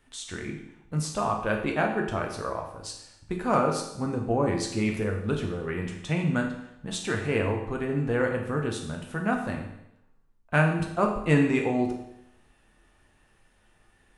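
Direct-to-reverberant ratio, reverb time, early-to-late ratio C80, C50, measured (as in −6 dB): 1.0 dB, 0.80 s, 8.0 dB, 6.0 dB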